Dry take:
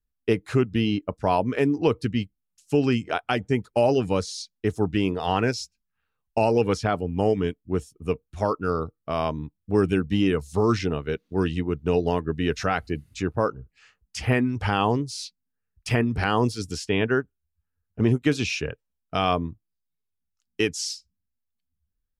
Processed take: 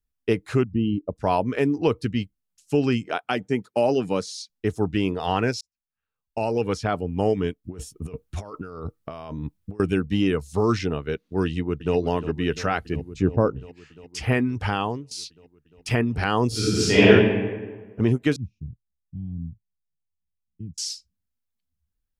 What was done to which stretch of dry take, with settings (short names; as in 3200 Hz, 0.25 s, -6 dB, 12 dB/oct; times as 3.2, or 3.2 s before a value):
0.64–1.16 formant sharpening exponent 2
3.03–4.5 Chebyshev high-pass 180 Hz
5.61–7 fade in
7.64–9.8 negative-ratio compressor -35 dBFS
11.45–11.96 echo throw 0.35 s, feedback 80%, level -13 dB
12.96–13.59 tilt shelf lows +7.5 dB, about 780 Hz
14.64–15.11 fade out, to -17.5 dB
16.48–17.08 reverb throw, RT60 1.4 s, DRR -11 dB
18.36–20.78 inverse Chebyshev low-pass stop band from 500 Hz, stop band 50 dB